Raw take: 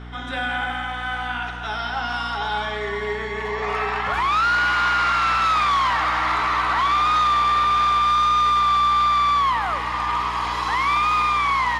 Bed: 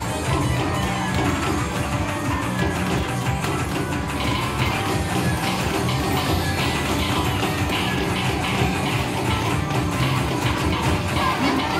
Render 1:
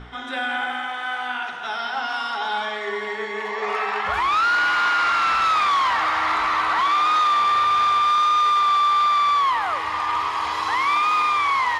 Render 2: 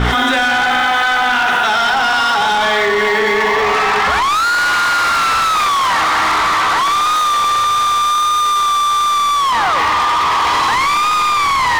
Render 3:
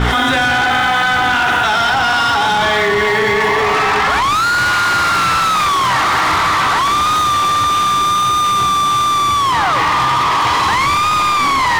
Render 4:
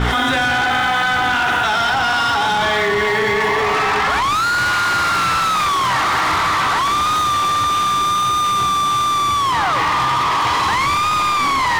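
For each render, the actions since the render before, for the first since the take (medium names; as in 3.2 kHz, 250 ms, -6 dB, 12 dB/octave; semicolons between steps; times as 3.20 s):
de-hum 60 Hz, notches 7
waveshaping leveller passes 3; level flattener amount 100%
add bed -6.5 dB
trim -3 dB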